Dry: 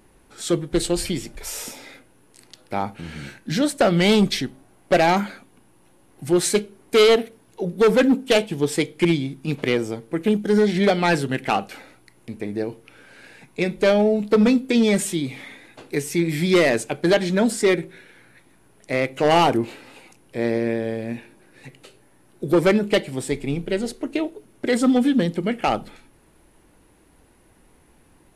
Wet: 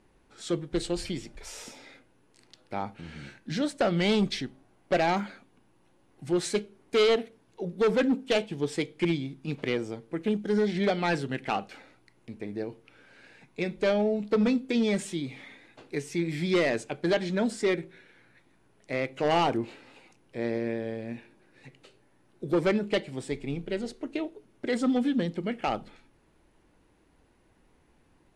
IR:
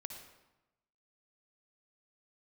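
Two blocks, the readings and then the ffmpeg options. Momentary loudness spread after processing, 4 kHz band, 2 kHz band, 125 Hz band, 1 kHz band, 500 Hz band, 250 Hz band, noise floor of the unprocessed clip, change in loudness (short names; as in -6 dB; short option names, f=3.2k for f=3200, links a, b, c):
16 LU, -8.5 dB, -8.0 dB, -8.0 dB, -8.0 dB, -8.0 dB, -8.0 dB, -56 dBFS, -8.0 dB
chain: -af "lowpass=6.8k,volume=-8dB"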